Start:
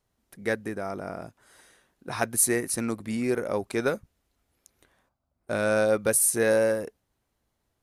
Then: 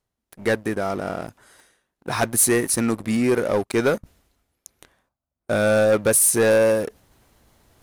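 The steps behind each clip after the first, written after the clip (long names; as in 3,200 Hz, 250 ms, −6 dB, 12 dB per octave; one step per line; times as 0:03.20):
leveller curve on the samples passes 3
reversed playback
upward compression, threshold −32 dBFS
reversed playback
level −3 dB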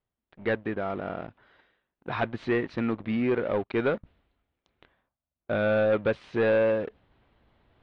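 Butterworth low-pass 3,600 Hz 36 dB per octave
level −6 dB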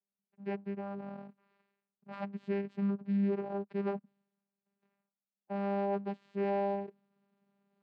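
channel vocoder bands 8, saw 199 Hz
harmonic and percussive parts rebalanced percussive −17 dB
level −7 dB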